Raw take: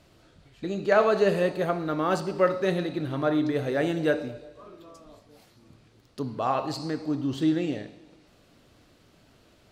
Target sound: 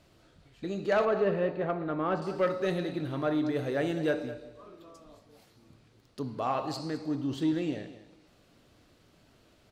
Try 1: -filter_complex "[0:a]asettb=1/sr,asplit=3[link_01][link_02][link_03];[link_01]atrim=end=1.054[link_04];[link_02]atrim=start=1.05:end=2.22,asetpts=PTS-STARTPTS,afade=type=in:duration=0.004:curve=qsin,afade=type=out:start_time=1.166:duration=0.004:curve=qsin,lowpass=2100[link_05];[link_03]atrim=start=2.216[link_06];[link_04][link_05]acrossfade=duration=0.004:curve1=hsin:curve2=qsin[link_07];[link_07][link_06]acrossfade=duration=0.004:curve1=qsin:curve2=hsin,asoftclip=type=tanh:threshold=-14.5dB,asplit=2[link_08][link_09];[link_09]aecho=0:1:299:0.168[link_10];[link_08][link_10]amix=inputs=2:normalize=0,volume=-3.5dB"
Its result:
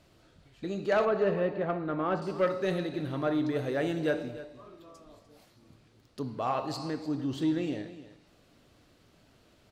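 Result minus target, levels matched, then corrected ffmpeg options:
echo 93 ms late
-filter_complex "[0:a]asettb=1/sr,asplit=3[link_01][link_02][link_03];[link_01]atrim=end=1.054[link_04];[link_02]atrim=start=1.05:end=2.22,asetpts=PTS-STARTPTS,afade=type=in:duration=0.004:curve=qsin,afade=type=out:start_time=1.166:duration=0.004:curve=qsin,lowpass=2100[link_05];[link_03]atrim=start=2.216[link_06];[link_04][link_05]acrossfade=duration=0.004:curve1=hsin:curve2=qsin[link_07];[link_07][link_06]acrossfade=duration=0.004:curve1=qsin:curve2=hsin,asoftclip=type=tanh:threshold=-14.5dB,asplit=2[link_08][link_09];[link_09]aecho=0:1:206:0.168[link_10];[link_08][link_10]amix=inputs=2:normalize=0,volume=-3.5dB"

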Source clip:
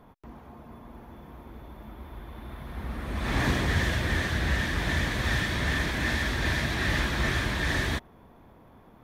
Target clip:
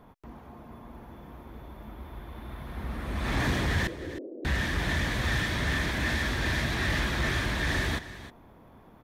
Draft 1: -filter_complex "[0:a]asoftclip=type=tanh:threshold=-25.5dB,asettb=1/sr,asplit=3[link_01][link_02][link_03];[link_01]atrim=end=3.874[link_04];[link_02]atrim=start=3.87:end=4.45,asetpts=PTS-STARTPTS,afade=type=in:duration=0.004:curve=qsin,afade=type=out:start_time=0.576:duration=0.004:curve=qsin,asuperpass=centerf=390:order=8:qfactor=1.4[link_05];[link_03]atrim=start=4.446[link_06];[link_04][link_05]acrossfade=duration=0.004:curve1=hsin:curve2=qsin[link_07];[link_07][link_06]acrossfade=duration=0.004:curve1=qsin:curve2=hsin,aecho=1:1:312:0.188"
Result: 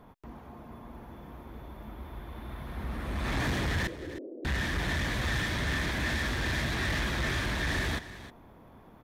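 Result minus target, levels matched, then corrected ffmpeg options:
soft clipping: distortion +8 dB
-filter_complex "[0:a]asoftclip=type=tanh:threshold=-19dB,asettb=1/sr,asplit=3[link_01][link_02][link_03];[link_01]atrim=end=3.874[link_04];[link_02]atrim=start=3.87:end=4.45,asetpts=PTS-STARTPTS,afade=type=in:duration=0.004:curve=qsin,afade=type=out:start_time=0.576:duration=0.004:curve=qsin,asuperpass=centerf=390:order=8:qfactor=1.4[link_05];[link_03]atrim=start=4.446[link_06];[link_04][link_05]acrossfade=duration=0.004:curve1=hsin:curve2=qsin[link_07];[link_07][link_06]acrossfade=duration=0.004:curve1=qsin:curve2=hsin,aecho=1:1:312:0.188"

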